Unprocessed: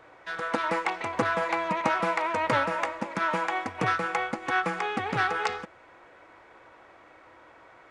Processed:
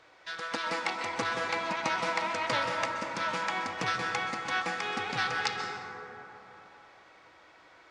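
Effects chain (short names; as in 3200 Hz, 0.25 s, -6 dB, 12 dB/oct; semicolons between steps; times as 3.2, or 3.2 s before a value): bell 4800 Hz +15 dB 1.8 oct; plate-style reverb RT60 3.4 s, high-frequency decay 0.3×, pre-delay 0.115 s, DRR 3.5 dB; gain -8.5 dB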